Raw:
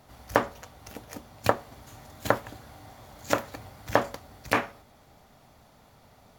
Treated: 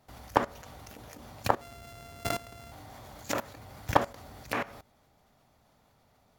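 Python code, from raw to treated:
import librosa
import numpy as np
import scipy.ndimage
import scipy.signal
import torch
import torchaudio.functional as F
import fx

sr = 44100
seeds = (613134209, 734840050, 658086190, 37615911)

y = fx.sample_sort(x, sr, block=64, at=(1.61, 2.72))
y = fx.level_steps(y, sr, step_db=18)
y = F.gain(torch.from_numpy(y), 6.0).numpy()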